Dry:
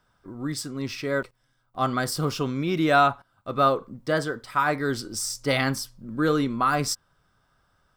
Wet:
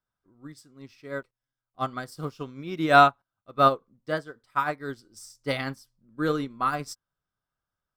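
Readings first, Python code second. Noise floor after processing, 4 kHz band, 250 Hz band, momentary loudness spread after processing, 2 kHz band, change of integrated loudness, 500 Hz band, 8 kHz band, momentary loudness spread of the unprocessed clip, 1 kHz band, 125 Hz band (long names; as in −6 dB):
below −85 dBFS, −5.0 dB, −5.5 dB, 19 LU, −2.0 dB, −0.5 dB, −2.5 dB, below −10 dB, 12 LU, +0.5 dB, −6.0 dB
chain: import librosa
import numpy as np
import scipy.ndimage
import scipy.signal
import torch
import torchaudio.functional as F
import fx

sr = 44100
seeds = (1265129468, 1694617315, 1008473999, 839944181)

y = fx.upward_expand(x, sr, threshold_db=-33.0, expansion=2.5)
y = F.gain(torch.from_numpy(y), 4.0).numpy()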